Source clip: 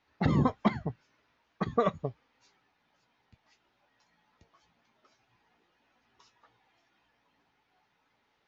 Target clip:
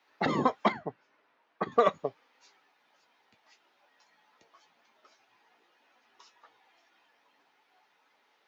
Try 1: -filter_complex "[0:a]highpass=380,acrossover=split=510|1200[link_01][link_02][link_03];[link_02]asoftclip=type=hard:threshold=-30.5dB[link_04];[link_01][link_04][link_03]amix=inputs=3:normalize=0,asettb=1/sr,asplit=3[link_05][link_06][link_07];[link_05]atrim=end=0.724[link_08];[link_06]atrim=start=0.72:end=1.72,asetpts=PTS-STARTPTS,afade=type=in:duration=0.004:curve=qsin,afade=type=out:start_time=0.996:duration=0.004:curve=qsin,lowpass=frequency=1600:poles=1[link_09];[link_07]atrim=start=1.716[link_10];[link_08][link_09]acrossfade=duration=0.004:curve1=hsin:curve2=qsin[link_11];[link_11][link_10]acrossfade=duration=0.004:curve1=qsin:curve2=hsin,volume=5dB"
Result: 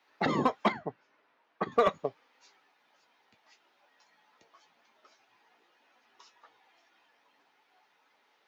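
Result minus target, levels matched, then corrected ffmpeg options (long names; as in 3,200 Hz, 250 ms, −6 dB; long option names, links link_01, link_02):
hard clipping: distortion +14 dB
-filter_complex "[0:a]highpass=380,acrossover=split=510|1200[link_01][link_02][link_03];[link_02]asoftclip=type=hard:threshold=-24dB[link_04];[link_01][link_04][link_03]amix=inputs=3:normalize=0,asettb=1/sr,asplit=3[link_05][link_06][link_07];[link_05]atrim=end=0.724[link_08];[link_06]atrim=start=0.72:end=1.72,asetpts=PTS-STARTPTS,afade=type=in:duration=0.004:curve=qsin,afade=type=out:start_time=0.996:duration=0.004:curve=qsin,lowpass=frequency=1600:poles=1[link_09];[link_07]atrim=start=1.716[link_10];[link_08][link_09]acrossfade=duration=0.004:curve1=hsin:curve2=qsin[link_11];[link_11][link_10]acrossfade=duration=0.004:curve1=qsin:curve2=hsin,volume=5dB"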